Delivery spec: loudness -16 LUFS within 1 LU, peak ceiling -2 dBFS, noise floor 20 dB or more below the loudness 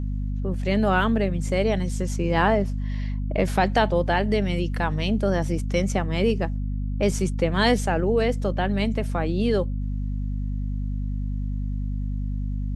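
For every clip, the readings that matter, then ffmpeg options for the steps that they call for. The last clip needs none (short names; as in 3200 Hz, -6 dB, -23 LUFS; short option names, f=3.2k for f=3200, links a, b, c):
hum 50 Hz; harmonics up to 250 Hz; hum level -24 dBFS; loudness -24.5 LUFS; peak -5.5 dBFS; loudness target -16.0 LUFS
-> -af "bandreject=f=50:t=h:w=6,bandreject=f=100:t=h:w=6,bandreject=f=150:t=h:w=6,bandreject=f=200:t=h:w=6,bandreject=f=250:t=h:w=6"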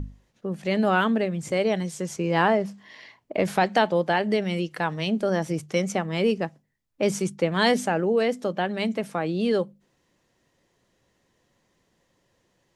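hum none; loudness -25.0 LUFS; peak -6.5 dBFS; loudness target -16.0 LUFS
-> -af "volume=9dB,alimiter=limit=-2dB:level=0:latency=1"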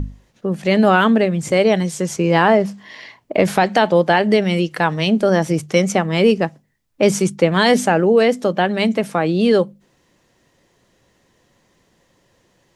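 loudness -16.5 LUFS; peak -2.0 dBFS; noise floor -61 dBFS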